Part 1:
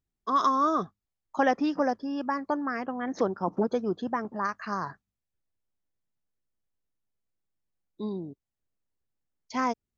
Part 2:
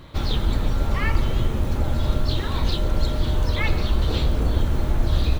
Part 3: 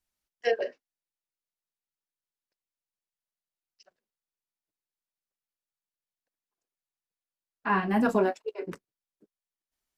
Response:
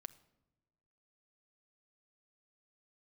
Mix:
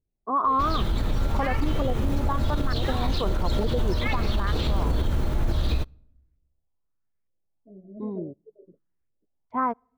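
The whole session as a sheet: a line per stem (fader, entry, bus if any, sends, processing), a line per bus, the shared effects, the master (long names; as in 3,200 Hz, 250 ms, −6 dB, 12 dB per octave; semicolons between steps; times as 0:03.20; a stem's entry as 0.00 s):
−2.0 dB, 0.00 s, send −16.5 dB, adaptive Wiener filter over 9 samples; low-shelf EQ 130 Hz +7.5 dB; auto-filter low-pass saw up 1.1 Hz 470–2,400 Hz
−1.0 dB, 0.45 s, send −11.5 dB, no processing
−15.5 dB, 0.00 s, no send, Chebyshev low-pass filter 670 Hz, order 10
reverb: on, pre-delay 6 ms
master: brickwall limiter −15.5 dBFS, peak gain reduction 8.5 dB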